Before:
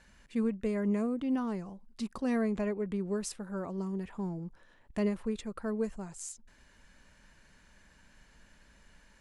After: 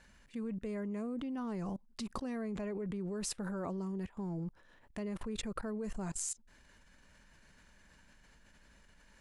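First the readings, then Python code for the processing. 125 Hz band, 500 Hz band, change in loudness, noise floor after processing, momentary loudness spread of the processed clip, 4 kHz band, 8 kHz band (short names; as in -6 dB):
-2.5 dB, -6.5 dB, -5.5 dB, -64 dBFS, 5 LU, +2.0 dB, +3.0 dB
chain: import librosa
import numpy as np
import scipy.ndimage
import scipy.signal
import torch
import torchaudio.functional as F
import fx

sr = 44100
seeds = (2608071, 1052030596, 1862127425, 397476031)

y = fx.level_steps(x, sr, step_db=24)
y = F.gain(torch.from_numpy(y), 10.0).numpy()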